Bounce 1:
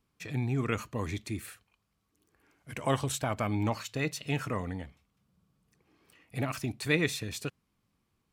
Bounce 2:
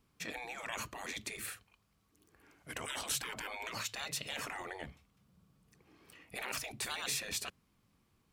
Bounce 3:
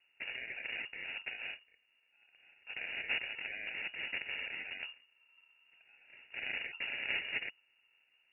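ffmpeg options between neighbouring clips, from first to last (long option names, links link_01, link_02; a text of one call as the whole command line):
ffmpeg -i in.wav -af "afftfilt=real='re*lt(hypot(re,im),0.0355)':imag='im*lt(hypot(re,im),0.0355)':win_size=1024:overlap=0.75,volume=3.5dB" out.wav
ffmpeg -i in.wav -af "acrusher=samples=25:mix=1:aa=0.000001,lowpass=frequency=2500:width_type=q:width=0.5098,lowpass=frequency=2500:width_type=q:width=0.6013,lowpass=frequency=2500:width_type=q:width=0.9,lowpass=frequency=2500:width_type=q:width=2.563,afreqshift=-2900,volume=1dB" out.wav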